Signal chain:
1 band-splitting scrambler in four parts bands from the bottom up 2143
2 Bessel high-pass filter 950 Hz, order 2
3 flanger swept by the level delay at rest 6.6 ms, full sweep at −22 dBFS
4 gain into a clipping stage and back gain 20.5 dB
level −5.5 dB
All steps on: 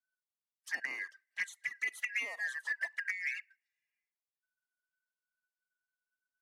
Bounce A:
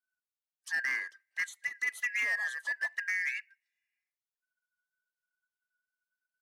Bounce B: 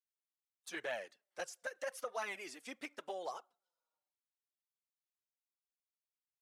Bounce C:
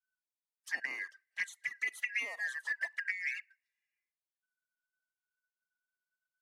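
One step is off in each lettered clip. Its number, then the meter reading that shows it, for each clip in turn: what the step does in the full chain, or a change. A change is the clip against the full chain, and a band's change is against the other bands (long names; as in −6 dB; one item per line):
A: 3, 500 Hz band −3.5 dB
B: 1, 500 Hz band +16.5 dB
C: 4, distortion level −22 dB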